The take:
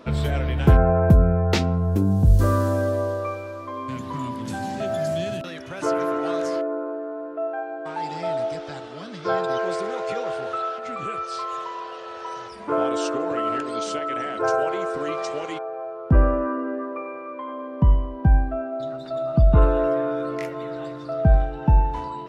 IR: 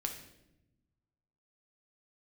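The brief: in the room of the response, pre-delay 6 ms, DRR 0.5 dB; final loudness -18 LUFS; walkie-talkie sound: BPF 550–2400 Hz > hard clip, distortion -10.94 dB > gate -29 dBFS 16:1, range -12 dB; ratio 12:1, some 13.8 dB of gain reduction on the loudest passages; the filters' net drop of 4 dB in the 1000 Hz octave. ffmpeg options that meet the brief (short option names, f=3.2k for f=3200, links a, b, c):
-filter_complex "[0:a]equalizer=f=1k:t=o:g=-4.5,acompressor=threshold=-24dB:ratio=12,asplit=2[a][b];[1:a]atrim=start_sample=2205,adelay=6[c];[b][c]afir=irnorm=-1:irlink=0,volume=-1dB[d];[a][d]amix=inputs=2:normalize=0,highpass=550,lowpass=2.4k,asoftclip=type=hard:threshold=-28.5dB,agate=range=-12dB:threshold=-29dB:ratio=16,volume=27.5dB"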